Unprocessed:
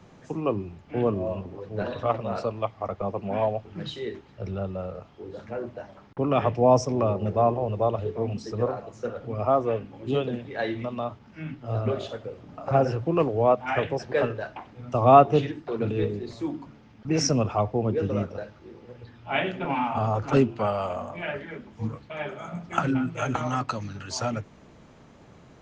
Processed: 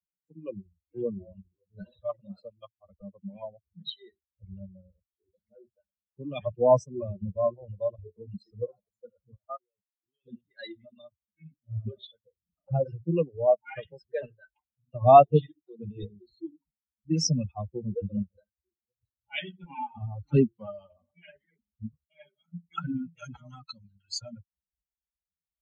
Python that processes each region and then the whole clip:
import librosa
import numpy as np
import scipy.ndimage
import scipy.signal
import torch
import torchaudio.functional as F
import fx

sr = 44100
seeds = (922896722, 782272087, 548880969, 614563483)

y = fx.chain(x, sr, fx.lowpass(hz=3000.0, slope=24),
    fx.tilt_eq(slope=2.0),
    fx.level_steps(step_db=21), at=(9.36, 10.26))
y = fx.bin_expand(y, sr, power=3.0)
y = fx.graphic_eq_15(y, sr, hz=(160, 630, 1600, 4000), db=(8, 5, -9, 6))